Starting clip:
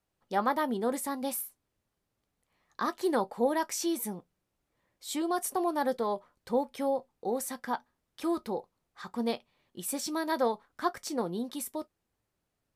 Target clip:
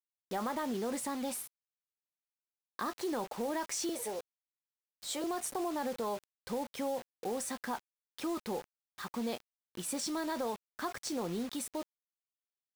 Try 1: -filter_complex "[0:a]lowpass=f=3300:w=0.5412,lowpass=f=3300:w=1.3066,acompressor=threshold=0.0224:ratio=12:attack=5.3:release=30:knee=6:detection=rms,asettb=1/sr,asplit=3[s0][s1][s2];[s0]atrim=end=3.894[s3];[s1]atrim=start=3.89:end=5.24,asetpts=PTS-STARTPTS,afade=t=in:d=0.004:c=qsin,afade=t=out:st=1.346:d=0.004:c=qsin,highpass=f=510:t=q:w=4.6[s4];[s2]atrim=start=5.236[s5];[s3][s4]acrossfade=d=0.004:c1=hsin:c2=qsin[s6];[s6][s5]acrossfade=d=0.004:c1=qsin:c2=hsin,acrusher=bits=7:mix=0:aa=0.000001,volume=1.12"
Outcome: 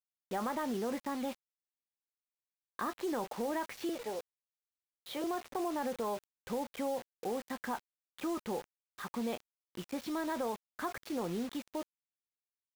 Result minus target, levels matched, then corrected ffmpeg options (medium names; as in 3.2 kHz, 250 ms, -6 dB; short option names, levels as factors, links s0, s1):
8 kHz band -9.5 dB
-filter_complex "[0:a]lowpass=f=9900:w=0.5412,lowpass=f=9900:w=1.3066,acompressor=threshold=0.0224:ratio=12:attack=5.3:release=30:knee=6:detection=rms,asettb=1/sr,asplit=3[s0][s1][s2];[s0]atrim=end=3.894[s3];[s1]atrim=start=3.89:end=5.24,asetpts=PTS-STARTPTS,afade=t=in:d=0.004:c=qsin,afade=t=out:st=1.346:d=0.004:c=qsin,highpass=f=510:t=q:w=4.6[s4];[s2]atrim=start=5.236[s5];[s3][s4]acrossfade=d=0.004:c1=hsin:c2=qsin[s6];[s6][s5]acrossfade=d=0.004:c1=qsin:c2=hsin,acrusher=bits=7:mix=0:aa=0.000001,volume=1.12"